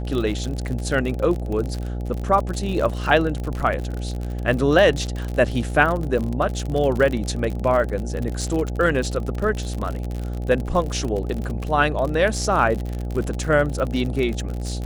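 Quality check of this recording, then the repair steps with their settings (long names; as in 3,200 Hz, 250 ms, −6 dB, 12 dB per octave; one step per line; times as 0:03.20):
mains buzz 60 Hz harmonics 14 −27 dBFS
surface crackle 46 per second −25 dBFS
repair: click removal
hum removal 60 Hz, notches 14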